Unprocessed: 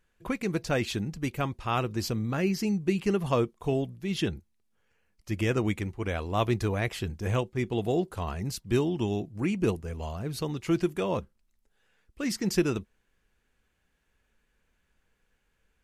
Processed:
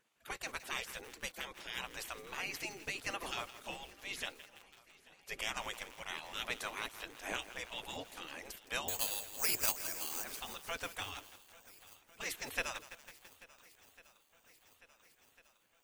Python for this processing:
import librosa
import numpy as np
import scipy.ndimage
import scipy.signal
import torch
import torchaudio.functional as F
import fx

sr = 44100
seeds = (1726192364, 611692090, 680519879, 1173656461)

p1 = fx.spec_gate(x, sr, threshold_db=-20, keep='weak')
p2 = fx.resample_bad(p1, sr, factor=6, down='none', up='zero_stuff', at=(8.88, 10.24))
p3 = p2 + fx.echo_swing(p2, sr, ms=1399, ratio=1.5, feedback_pct=59, wet_db=-22.5, dry=0)
p4 = fx.echo_crushed(p3, sr, ms=166, feedback_pct=80, bits=8, wet_db=-12.5)
y = F.gain(torch.from_numpy(p4), 1.0).numpy()